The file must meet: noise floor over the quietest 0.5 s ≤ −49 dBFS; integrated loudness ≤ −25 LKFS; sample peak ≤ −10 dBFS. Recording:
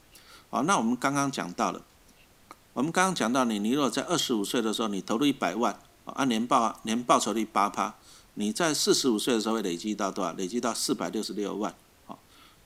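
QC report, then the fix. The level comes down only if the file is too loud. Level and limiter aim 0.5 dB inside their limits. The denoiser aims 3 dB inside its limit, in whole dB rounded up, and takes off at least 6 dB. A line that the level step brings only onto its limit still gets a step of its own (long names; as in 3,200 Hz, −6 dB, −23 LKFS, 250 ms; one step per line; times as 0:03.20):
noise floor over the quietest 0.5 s −58 dBFS: in spec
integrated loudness −27.5 LKFS: in spec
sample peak −7.0 dBFS: out of spec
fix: brickwall limiter −10.5 dBFS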